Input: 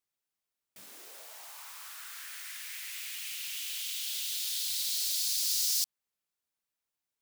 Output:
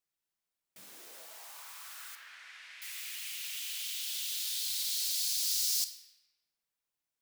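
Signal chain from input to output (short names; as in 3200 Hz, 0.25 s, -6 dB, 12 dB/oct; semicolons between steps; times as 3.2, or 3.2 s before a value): 2.15–2.82 Bessel low-pass 2600 Hz, order 2; reverb RT60 1.3 s, pre-delay 6 ms, DRR 7.5 dB; gain -2 dB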